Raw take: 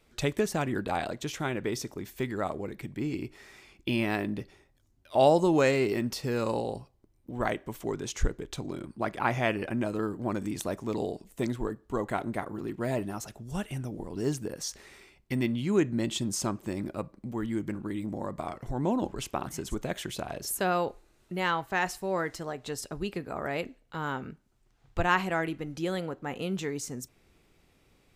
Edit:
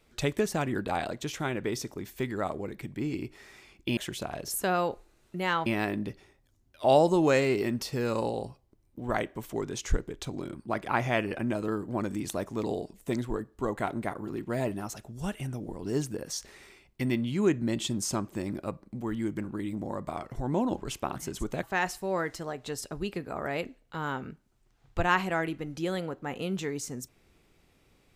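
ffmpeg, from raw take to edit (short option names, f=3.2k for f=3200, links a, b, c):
-filter_complex "[0:a]asplit=4[a][b][c][d];[a]atrim=end=3.972[e];[b]atrim=start=19.938:end=21.632[f];[c]atrim=start=3.968:end=19.942[g];[d]atrim=start=21.628[h];[e][f]acrossfade=d=0.004:c1=hsin:c2=hsin[i];[i][g]acrossfade=d=0.004:c1=hsin:c2=hsin[j];[j][h]acrossfade=d=0.004:c1=hsin:c2=hsin"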